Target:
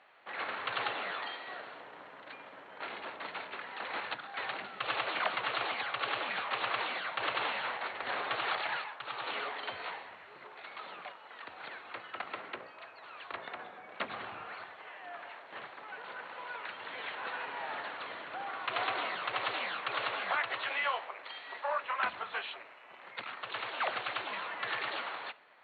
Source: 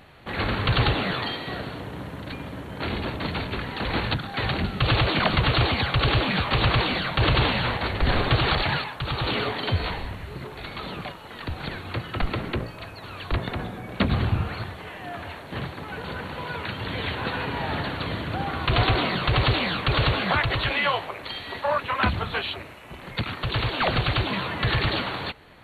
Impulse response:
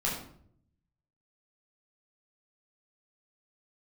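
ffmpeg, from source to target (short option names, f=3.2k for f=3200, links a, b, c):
-filter_complex "[0:a]highpass=690,lowpass=2.6k,asplit=2[a][b];[1:a]atrim=start_sample=2205[c];[b][c]afir=irnorm=-1:irlink=0,volume=-23.5dB[d];[a][d]amix=inputs=2:normalize=0,volume=-7.5dB"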